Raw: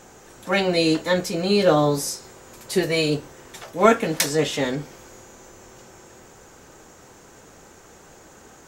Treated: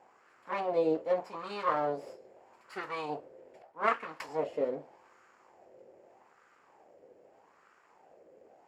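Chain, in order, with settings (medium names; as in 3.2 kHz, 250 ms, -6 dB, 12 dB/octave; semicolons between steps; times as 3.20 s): comb filter that takes the minimum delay 0.4 ms; wah-wah 0.81 Hz 510–1300 Hz, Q 3.9; 3.62–4.29 s: three bands expanded up and down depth 40%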